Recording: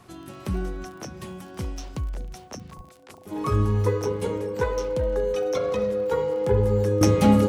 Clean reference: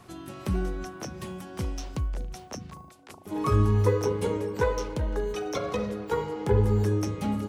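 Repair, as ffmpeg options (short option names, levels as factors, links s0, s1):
-filter_complex "[0:a]adeclick=t=4,bandreject=f=510:w=30,asplit=3[s0][s1][s2];[s0]afade=t=out:st=2.76:d=0.02[s3];[s1]highpass=f=140:w=0.5412,highpass=f=140:w=1.3066,afade=t=in:st=2.76:d=0.02,afade=t=out:st=2.88:d=0.02[s4];[s2]afade=t=in:st=2.88:d=0.02[s5];[s3][s4][s5]amix=inputs=3:normalize=0,asetnsamples=n=441:p=0,asendcmd='7.01 volume volume -11.5dB',volume=1"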